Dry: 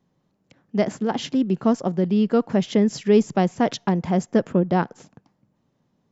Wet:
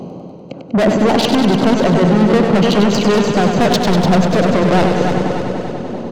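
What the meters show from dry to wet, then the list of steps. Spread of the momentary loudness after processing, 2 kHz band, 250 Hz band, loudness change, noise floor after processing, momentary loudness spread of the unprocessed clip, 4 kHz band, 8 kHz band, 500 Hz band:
11 LU, +13.5 dB, +8.0 dB, +8.0 dB, −33 dBFS, 6 LU, +14.0 dB, can't be measured, +9.0 dB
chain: adaptive Wiener filter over 25 samples
flat-topped bell 1,400 Hz −8.5 dB
reversed playback
upward compression, threshold −37 dBFS
reversed playback
mid-hump overdrive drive 33 dB, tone 5,800 Hz, clips at −6.5 dBFS
on a send: repeating echo 295 ms, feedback 46%, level −14 dB
on the sum: boost into a limiter +16.5 dB
feedback echo with a swinging delay time 98 ms, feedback 80%, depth 50 cents, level −6.5 dB
level −8 dB

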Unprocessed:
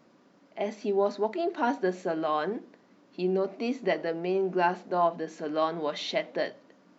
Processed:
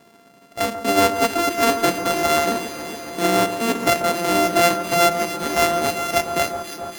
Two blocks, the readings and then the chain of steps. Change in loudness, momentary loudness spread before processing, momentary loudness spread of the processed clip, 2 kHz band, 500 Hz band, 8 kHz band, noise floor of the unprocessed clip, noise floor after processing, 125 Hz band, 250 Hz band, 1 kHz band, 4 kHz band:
+10.0 dB, 8 LU, 8 LU, +13.5 dB, +7.5 dB, can't be measured, −61 dBFS, −51 dBFS, +9.0 dB, +8.0 dB, +11.0 dB, +15.0 dB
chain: samples sorted by size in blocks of 64 samples
delay that swaps between a low-pass and a high-pass 139 ms, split 1,600 Hz, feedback 88%, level −10 dB
level +8.5 dB

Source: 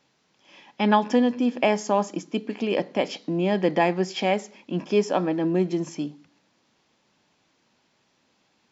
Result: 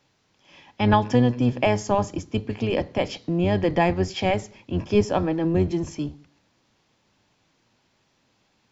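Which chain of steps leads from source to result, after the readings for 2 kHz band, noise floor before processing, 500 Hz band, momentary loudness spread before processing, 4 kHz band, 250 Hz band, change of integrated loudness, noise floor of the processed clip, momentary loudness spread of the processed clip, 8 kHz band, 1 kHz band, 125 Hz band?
0.0 dB, −68 dBFS, 0.0 dB, 9 LU, 0.0 dB, +0.5 dB, +1.0 dB, −67 dBFS, 9 LU, can't be measured, 0.0 dB, +8.0 dB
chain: sub-octave generator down 1 octave, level −1 dB

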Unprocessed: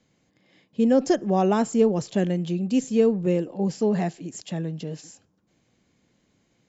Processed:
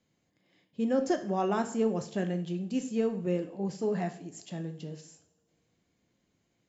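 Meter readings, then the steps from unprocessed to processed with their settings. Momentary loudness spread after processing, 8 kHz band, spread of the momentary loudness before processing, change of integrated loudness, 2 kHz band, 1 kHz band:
13 LU, can't be measured, 13 LU, −8.0 dB, −4.5 dB, −6.0 dB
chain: coupled-rooms reverb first 0.5 s, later 2.2 s, from −22 dB, DRR 6.5 dB
dynamic equaliser 1,400 Hz, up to +5 dB, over −39 dBFS, Q 1.2
level −9 dB

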